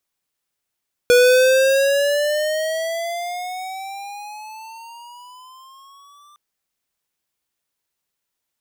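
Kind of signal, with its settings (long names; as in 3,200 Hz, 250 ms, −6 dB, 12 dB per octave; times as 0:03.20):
pitch glide with a swell square, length 5.26 s, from 486 Hz, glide +15.5 semitones, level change −38 dB, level −11 dB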